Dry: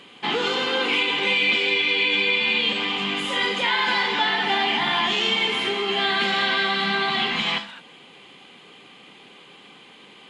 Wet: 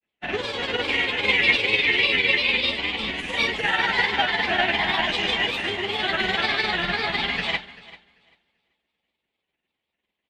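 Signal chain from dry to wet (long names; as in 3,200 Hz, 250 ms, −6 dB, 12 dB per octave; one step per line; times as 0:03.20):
sub-octave generator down 2 octaves, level −6 dB
thirty-one-band graphic EQ 630 Hz +7 dB, 1,250 Hz −6 dB, 2,000 Hz +6 dB
in parallel at −0.5 dB: brickwall limiter −17.5 dBFS, peak gain reduction 9 dB
on the sum: granular cloud, spray 12 ms, pitch spread up and down by 3 semitones
repeating echo 391 ms, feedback 46%, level −8 dB
expander for the loud parts 2.5 to 1, over −42 dBFS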